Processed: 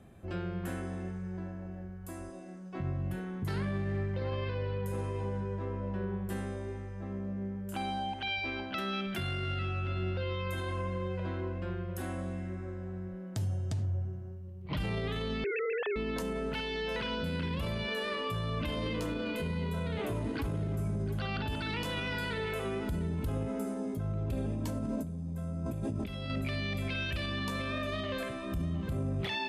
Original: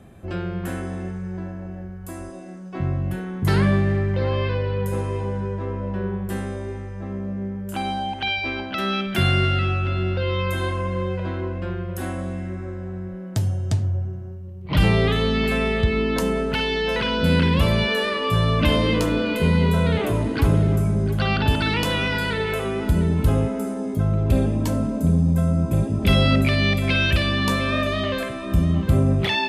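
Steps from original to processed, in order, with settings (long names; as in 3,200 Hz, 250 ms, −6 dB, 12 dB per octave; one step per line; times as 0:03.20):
0:15.44–0:15.96: three sine waves on the formant tracks
0:24.51–0:26.30: compressor whose output falls as the input rises −26 dBFS, ratio −1
brickwall limiter −18 dBFS, peak gain reduction 11 dB
level −8.5 dB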